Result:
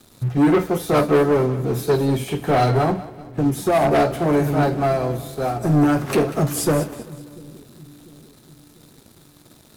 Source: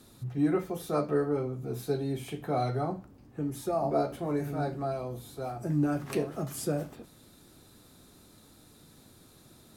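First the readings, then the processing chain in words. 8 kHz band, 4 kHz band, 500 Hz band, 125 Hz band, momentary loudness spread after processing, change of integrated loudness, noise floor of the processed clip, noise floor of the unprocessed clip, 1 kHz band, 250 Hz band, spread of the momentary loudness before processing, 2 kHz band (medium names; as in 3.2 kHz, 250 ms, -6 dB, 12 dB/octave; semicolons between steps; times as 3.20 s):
+13.0 dB, +14.0 dB, +12.5 dB, +12.5 dB, 9 LU, +12.5 dB, -51 dBFS, -57 dBFS, +13.0 dB, +12.0 dB, 10 LU, +16.5 dB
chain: waveshaping leveller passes 3; two-band feedback delay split 370 Hz, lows 695 ms, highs 192 ms, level -13.5 dB; upward expansion 1.5:1, over -32 dBFS; trim +6.5 dB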